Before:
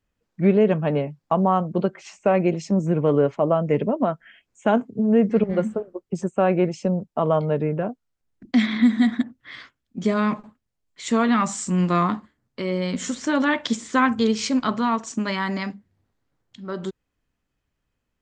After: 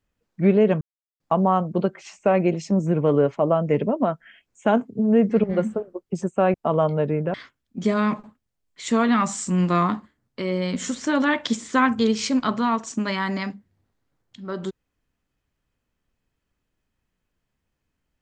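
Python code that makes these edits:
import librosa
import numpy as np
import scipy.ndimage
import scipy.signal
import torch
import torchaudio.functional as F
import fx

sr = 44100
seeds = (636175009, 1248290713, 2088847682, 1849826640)

y = fx.edit(x, sr, fx.silence(start_s=0.81, length_s=0.39),
    fx.cut(start_s=6.54, length_s=0.52),
    fx.cut(start_s=7.86, length_s=1.68), tone=tone)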